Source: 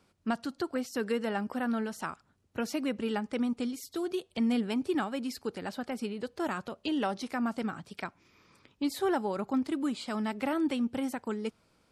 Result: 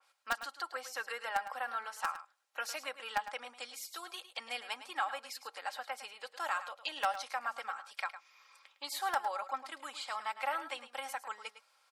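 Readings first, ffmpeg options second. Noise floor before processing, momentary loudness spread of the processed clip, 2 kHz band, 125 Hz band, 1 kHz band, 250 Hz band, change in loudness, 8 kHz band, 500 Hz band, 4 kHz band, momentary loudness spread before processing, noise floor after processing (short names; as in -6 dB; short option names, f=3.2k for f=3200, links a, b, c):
-70 dBFS, 9 LU, +1.5 dB, under -30 dB, +1.5 dB, -31.0 dB, -6.0 dB, +0.5 dB, -12.0 dB, +0.5 dB, 8 LU, -71 dBFS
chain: -filter_complex "[0:a]highpass=f=760:w=0.5412,highpass=f=760:w=1.3066,asplit=2[a][b];[b]acrusher=bits=3:mix=0:aa=0.000001,volume=-5dB[c];[a][c]amix=inputs=2:normalize=0,aecho=1:1:3.7:0.52,aecho=1:1:107:0.237,adynamicequalizer=threshold=0.00316:dfrequency=2600:dqfactor=0.7:tfrequency=2600:tqfactor=0.7:attack=5:release=100:ratio=0.375:range=2.5:mode=cutabove:tftype=highshelf,volume=1dB"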